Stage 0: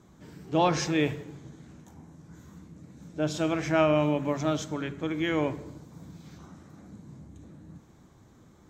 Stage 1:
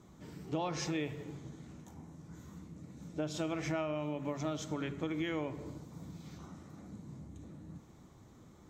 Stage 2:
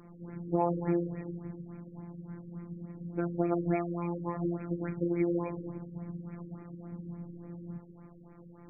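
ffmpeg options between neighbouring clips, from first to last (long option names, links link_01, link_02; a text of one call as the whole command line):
ffmpeg -i in.wav -af "acompressor=threshold=-31dB:ratio=8,bandreject=frequency=1600:width=11,volume=-1.5dB" out.wav
ffmpeg -i in.wav -af "afftfilt=real='hypot(re,im)*cos(PI*b)':imag='0':win_size=1024:overlap=0.75,afftfilt=real='re*lt(b*sr/1024,500*pow(2600/500,0.5+0.5*sin(2*PI*3.5*pts/sr)))':imag='im*lt(b*sr/1024,500*pow(2600/500,0.5+0.5*sin(2*PI*3.5*pts/sr)))':win_size=1024:overlap=0.75,volume=9dB" out.wav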